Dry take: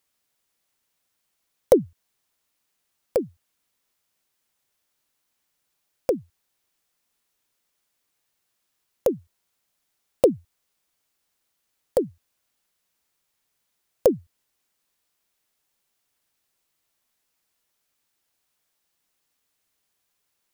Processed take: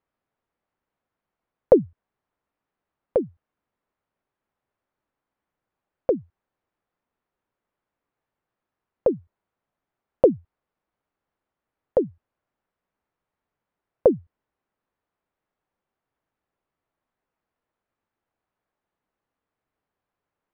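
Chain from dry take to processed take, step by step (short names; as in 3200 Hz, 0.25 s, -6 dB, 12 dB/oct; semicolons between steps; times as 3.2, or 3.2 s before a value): LPF 1300 Hz 12 dB/oct; gain +1.5 dB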